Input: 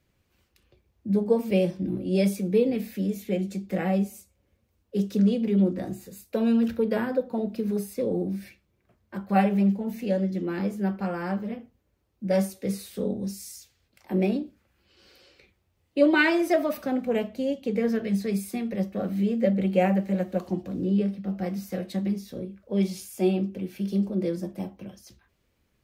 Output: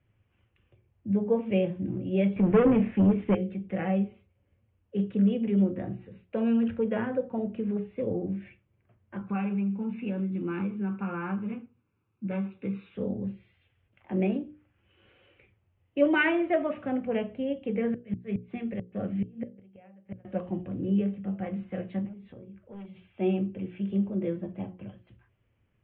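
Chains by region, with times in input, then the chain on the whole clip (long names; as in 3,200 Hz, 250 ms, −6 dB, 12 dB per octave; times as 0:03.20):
0:02.36–0:03.35: leveller curve on the samples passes 3 + high-frequency loss of the air 370 metres
0:09.21–0:12.95: high-pass filter 170 Hz + comb filter 0.8 ms, depth 72% + downward compressor 5 to 1, threshold −24 dBFS
0:17.90–0:20.25: gate with flip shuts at −18 dBFS, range −29 dB + dynamic equaliser 980 Hz, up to −5 dB, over −48 dBFS, Q 1.4
0:22.05–0:23.07: hard clipping −24 dBFS + downward compressor 8 to 1, threshold −39 dBFS
whole clip: Butterworth low-pass 3,200 Hz 72 dB per octave; parametric band 110 Hz +13 dB 0.5 octaves; mains-hum notches 60/120/180/240/300/360/420/480/540 Hz; level −3 dB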